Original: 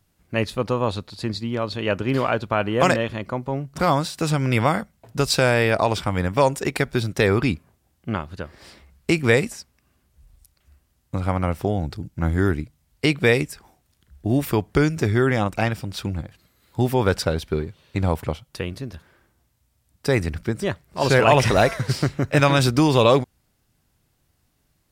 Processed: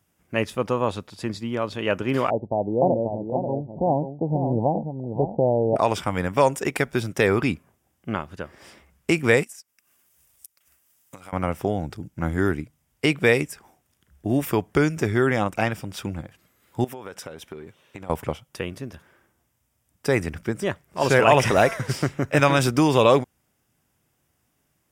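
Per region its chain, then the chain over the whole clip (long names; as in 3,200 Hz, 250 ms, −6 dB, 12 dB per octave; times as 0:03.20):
0:02.30–0:05.76: Butterworth low-pass 890 Hz 96 dB per octave + single-tap delay 537 ms −7.5 dB
0:09.43–0:11.33: spectral tilt +3.5 dB per octave + downward compressor 4 to 1, threshold −42 dBFS + transient designer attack +4 dB, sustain −11 dB
0:16.84–0:18.10: low-shelf EQ 140 Hz −12 dB + notch filter 4,700 Hz, Q 10 + downward compressor 16 to 1, threshold −31 dBFS
whole clip: high-pass filter 160 Hz 6 dB per octave; parametric band 4,200 Hz −13 dB 0.26 octaves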